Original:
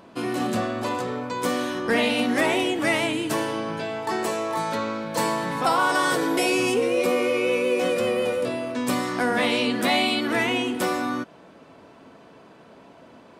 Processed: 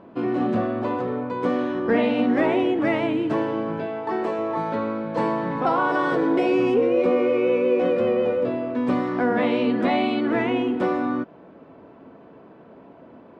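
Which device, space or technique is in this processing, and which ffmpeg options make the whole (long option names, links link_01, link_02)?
phone in a pocket: -filter_complex "[0:a]asettb=1/sr,asplit=3[link_01][link_02][link_03];[link_01]atrim=end=3.864[link_04];[link_02]atrim=start=3.86:end=4.39,asetpts=PTS-STARTPTS,afade=type=in:duration=0.004:curve=qsin,afade=type=out:start_time=0.526:duration=0.004:curve=qsin,lowshelf=frequency=160:gain=-8.5[link_05];[link_03]atrim=start=4.386[link_06];[link_04][link_05]acrossfade=duration=0.004:curve1=hsin:curve2=qsin[link_07];[link_07][link_06]acrossfade=duration=0.004:curve1=qsin:curve2=hsin,lowpass=3100,equalizer=frequency=330:width_type=o:width=1.6:gain=3.5,highshelf=frequency=2000:gain=-11,volume=1dB"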